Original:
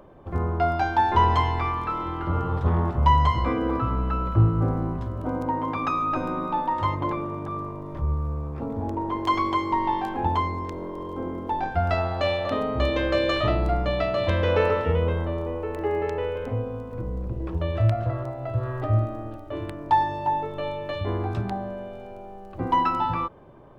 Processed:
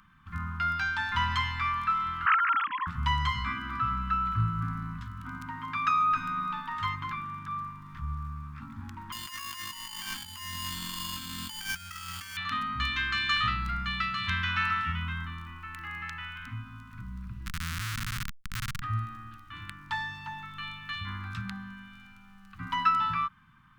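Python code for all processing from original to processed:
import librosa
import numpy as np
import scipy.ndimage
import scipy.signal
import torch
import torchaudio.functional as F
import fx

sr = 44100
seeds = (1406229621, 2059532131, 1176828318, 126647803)

y = fx.chain(x, sr, fx.sine_speech(),
    fx.high_shelf(hz=2300.0, db=5.0),
    fx.over_compress(threshold_db=-24.0, ratio=-0.5), at=(2.26, 2.87))
y = fx.chain(y, sr, fx.over_compress(threshold_db=-33.0, ratio=-1.0),
    fx.sample_hold(seeds[0], rate_hz=3900.0, jitter_pct=0), at=(9.12, 12.37))
y = fx.chain(y, sr, fx.peak_eq(hz=990.0, db=-11.5, octaves=1.8),
    fx.schmitt(flips_db=-27.0),
    fx.env_flatten(amount_pct=70), at=(17.46, 18.82))
y = scipy.signal.sosfilt(scipy.signal.cheby1(3, 1.0, [200.0, 1300.0], 'bandstop', fs=sr, output='sos'), y)
y = fx.bass_treble(y, sr, bass_db=-13, treble_db=-2)
y = F.gain(torch.from_numpy(y), 3.5).numpy()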